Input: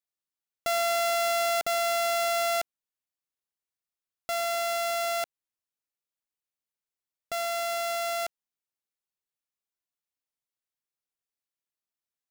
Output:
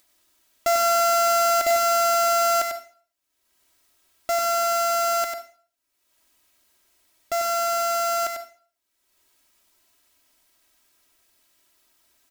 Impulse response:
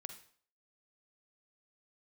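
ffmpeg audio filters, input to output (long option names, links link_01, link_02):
-filter_complex "[0:a]aecho=1:1:3.1:0.78,acompressor=mode=upward:threshold=-51dB:ratio=2.5,asplit=2[link_01][link_02];[1:a]atrim=start_sample=2205,asetrate=48510,aresample=44100,adelay=96[link_03];[link_02][link_03]afir=irnorm=-1:irlink=0,volume=0dB[link_04];[link_01][link_04]amix=inputs=2:normalize=0,volume=3.5dB"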